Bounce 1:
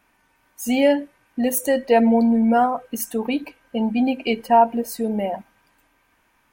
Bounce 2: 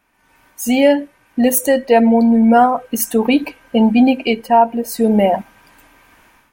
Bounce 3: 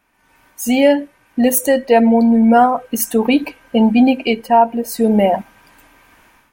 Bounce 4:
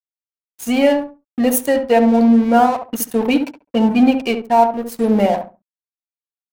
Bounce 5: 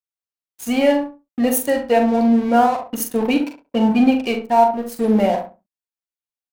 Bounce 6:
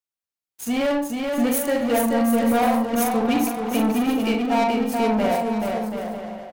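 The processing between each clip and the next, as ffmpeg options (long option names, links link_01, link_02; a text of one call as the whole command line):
ffmpeg -i in.wav -af "dynaudnorm=framelen=120:gausssize=5:maxgain=15dB,volume=-1dB" out.wav
ffmpeg -i in.wav -af anull out.wav
ffmpeg -i in.wav -filter_complex "[0:a]aeval=exprs='sgn(val(0))*max(abs(val(0))-0.0398,0)':channel_layout=same,asplit=2[link_01][link_02];[link_02]adelay=69,lowpass=frequency=1000:poles=1,volume=-5dB,asplit=2[link_03][link_04];[link_04]adelay=69,lowpass=frequency=1000:poles=1,volume=0.24,asplit=2[link_05][link_06];[link_06]adelay=69,lowpass=frequency=1000:poles=1,volume=0.24[link_07];[link_03][link_05][link_07]amix=inputs=3:normalize=0[link_08];[link_01][link_08]amix=inputs=2:normalize=0,volume=-1.5dB" out.wav
ffmpeg -i in.wav -filter_complex "[0:a]asplit=2[link_01][link_02];[link_02]adelay=42,volume=-7.5dB[link_03];[link_01][link_03]amix=inputs=2:normalize=0,volume=-2.5dB" out.wav
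ffmpeg -i in.wav -filter_complex "[0:a]asoftclip=type=tanh:threshold=-18dB,asplit=2[link_01][link_02];[link_02]aecho=0:1:430|731|941.7|1089|1192:0.631|0.398|0.251|0.158|0.1[link_03];[link_01][link_03]amix=inputs=2:normalize=0" out.wav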